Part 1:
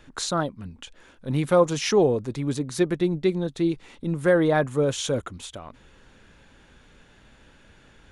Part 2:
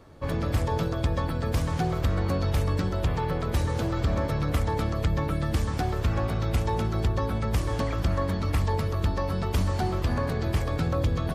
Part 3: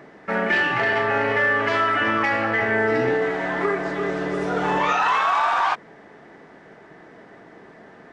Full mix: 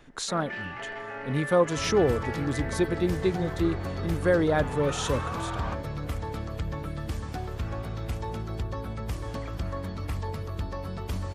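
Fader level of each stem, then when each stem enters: -3.5, -7.0, -16.5 dB; 0.00, 1.55, 0.00 s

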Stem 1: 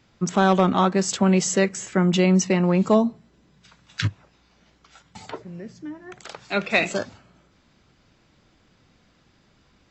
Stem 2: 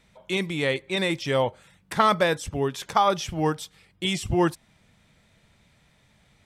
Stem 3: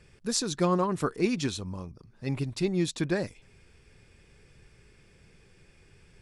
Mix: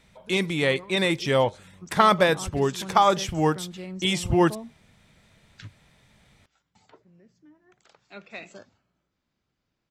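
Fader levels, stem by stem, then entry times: -19.5, +2.0, -18.5 dB; 1.60, 0.00, 0.00 s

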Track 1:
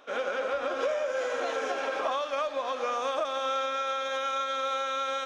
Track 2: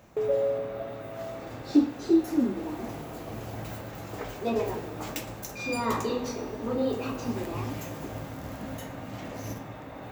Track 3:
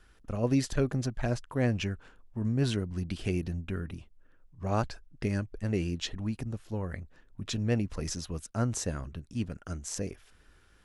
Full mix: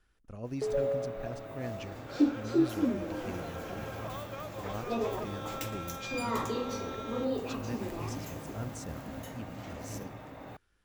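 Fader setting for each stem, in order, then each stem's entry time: -13.0, -4.5, -11.5 dB; 2.00, 0.45, 0.00 s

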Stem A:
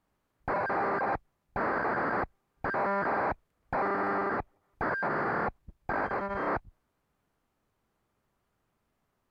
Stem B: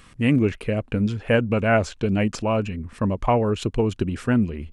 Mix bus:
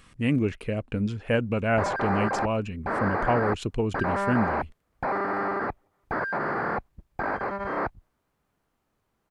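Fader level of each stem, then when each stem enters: +2.0, -5.0 dB; 1.30, 0.00 s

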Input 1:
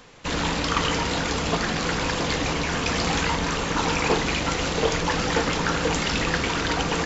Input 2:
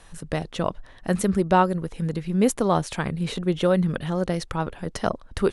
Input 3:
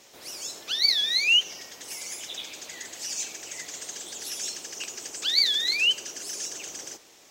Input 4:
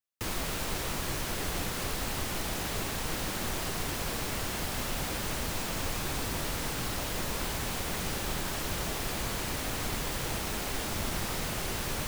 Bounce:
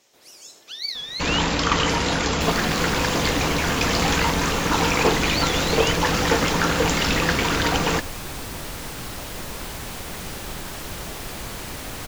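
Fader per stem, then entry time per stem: +3.0 dB, off, -7.5 dB, +0.5 dB; 0.95 s, off, 0.00 s, 2.20 s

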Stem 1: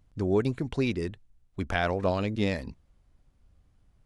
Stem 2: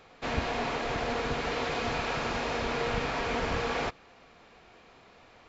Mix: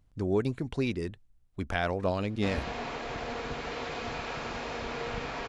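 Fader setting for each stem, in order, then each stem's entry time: -2.5, -5.0 dB; 0.00, 2.20 s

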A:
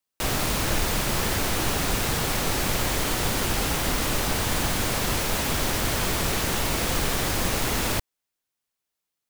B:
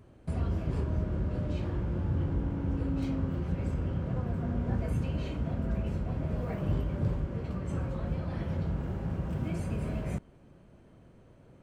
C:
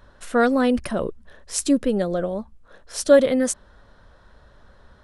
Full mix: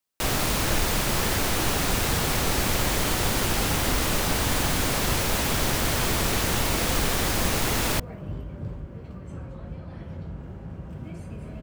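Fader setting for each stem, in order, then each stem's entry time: +0.5 dB, -4.5 dB, off; 0.00 s, 1.60 s, off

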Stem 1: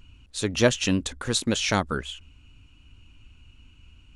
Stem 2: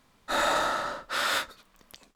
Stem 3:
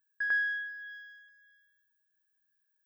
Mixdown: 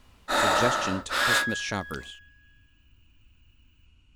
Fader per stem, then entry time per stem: -7.5, +2.5, +1.0 dB; 0.00, 0.00, 1.00 s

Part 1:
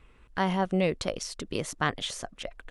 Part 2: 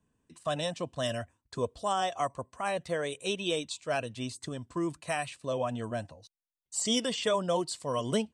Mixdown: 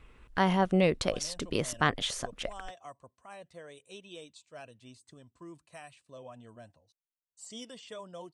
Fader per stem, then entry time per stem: +1.0, -16.0 dB; 0.00, 0.65 s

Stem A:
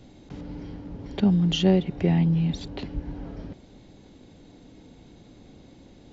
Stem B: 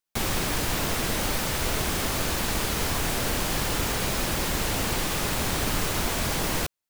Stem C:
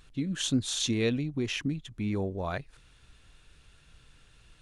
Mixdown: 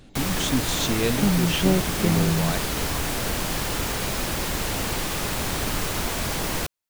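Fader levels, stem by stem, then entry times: -1.5, 0.0, +2.5 dB; 0.00, 0.00, 0.00 s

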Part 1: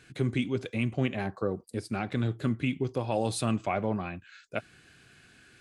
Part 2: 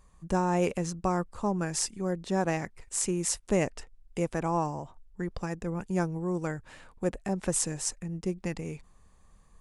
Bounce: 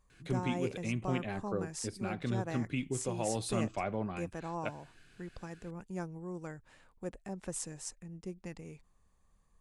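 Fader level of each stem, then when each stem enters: -6.0, -11.0 dB; 0.10, 0.00 s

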